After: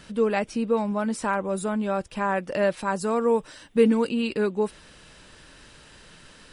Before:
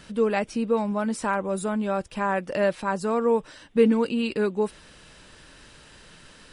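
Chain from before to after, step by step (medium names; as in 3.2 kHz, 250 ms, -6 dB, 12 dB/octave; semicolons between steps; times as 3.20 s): 2.77–4.09 s: treble shelf 8.9 kHz +10.5 dB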